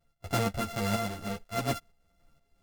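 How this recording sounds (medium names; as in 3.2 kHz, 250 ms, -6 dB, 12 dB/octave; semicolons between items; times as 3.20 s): a buzz of ramps at a fixed pitch in blocks of 64 samples; tremolo saw up 2.1 Hz, depth 65%; a shimmering, thickened sound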